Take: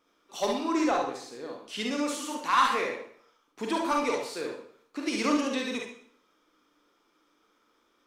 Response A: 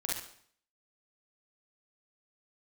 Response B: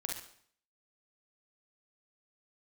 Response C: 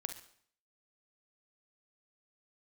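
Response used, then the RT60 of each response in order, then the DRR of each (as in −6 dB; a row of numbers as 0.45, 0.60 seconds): B; 0.60, 0.60, 0.60 seconds; −4.5, −0.5, 7.0 decibels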